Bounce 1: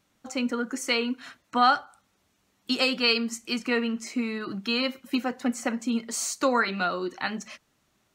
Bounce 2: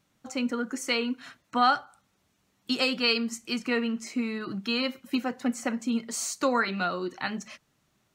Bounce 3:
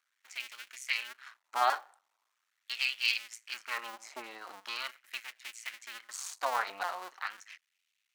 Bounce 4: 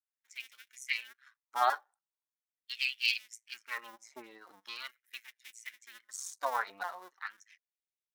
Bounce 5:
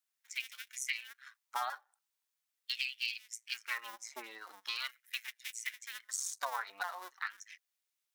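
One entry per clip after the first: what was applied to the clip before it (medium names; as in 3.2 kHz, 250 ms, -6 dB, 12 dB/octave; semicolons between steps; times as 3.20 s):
peaking EQ 140 Hz +5.5 dB 0.84 oct; trim -2 dB
cycle switcher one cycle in 2, muted; LFO high-pass sine 0.41 Hz 740–2500 Hz; trim -6.5 dB
expander on every frequency bin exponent 1.5; trim +1 dB
high-pass 1.3 kHz 6 dB/octave; compression 16:1, threshold -42 dBFS, peak gain reduction 18.5 dB; trim +9 dB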